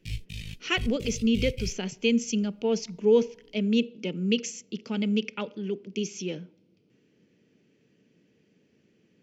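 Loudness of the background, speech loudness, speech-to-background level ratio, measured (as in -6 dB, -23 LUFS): -38.5 LUFS, -28.0 LUFS, 10.5 dB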